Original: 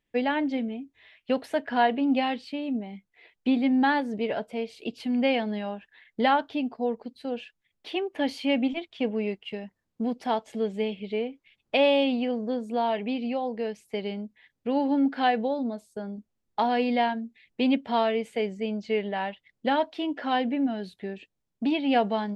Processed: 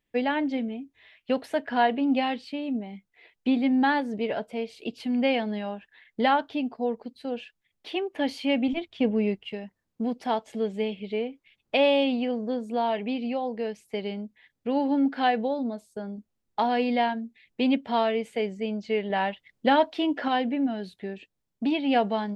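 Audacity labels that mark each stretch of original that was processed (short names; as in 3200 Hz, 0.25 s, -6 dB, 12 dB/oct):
8.680000	9.500000	low shelf 230 Hz +10 dB
19.100000	20.280000	gain +4 dB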